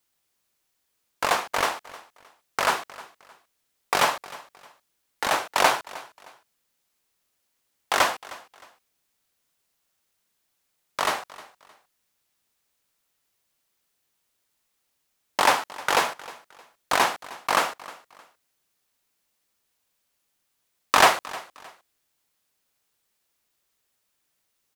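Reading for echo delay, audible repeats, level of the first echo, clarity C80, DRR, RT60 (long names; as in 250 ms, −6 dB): 310 ms, 2, −19.5 dB, no reverb audible, no reverb audible, no reverb audible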